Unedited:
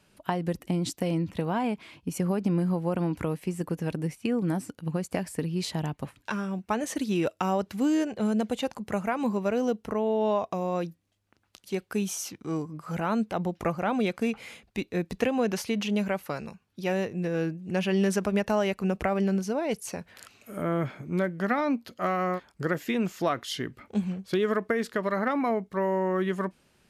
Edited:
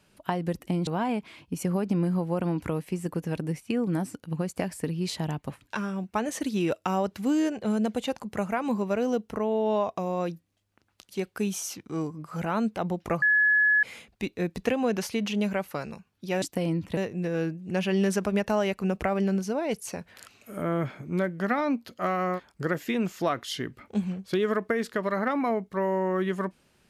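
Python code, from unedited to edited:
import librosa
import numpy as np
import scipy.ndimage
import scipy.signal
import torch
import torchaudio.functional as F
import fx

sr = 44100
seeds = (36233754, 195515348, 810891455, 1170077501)

y = fx.edit(x, sr, fx.move(start_s=0.87, length_s=0.55, to_s=16.97),
    fx.bleep(start_s=13.77, length_s=0.61, hz=1700.0, db=-18.0), tone=tone)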